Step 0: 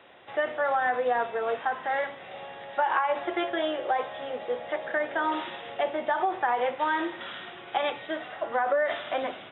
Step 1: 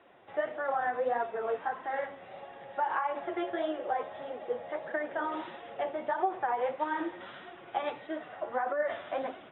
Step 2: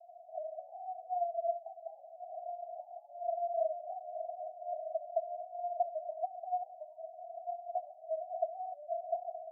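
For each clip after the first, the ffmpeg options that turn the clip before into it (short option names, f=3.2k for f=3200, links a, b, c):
-af "lowpass=f=1.3k:p=1,flanger=delay=2.7:depth=8.6:regen=26:speed=1.6:shape=sinusoidal"
-af "acompressor=threshold=-39dB:ratio=6,asuperpass=centerf=680:order=8:qfactor=7,volume=13dB"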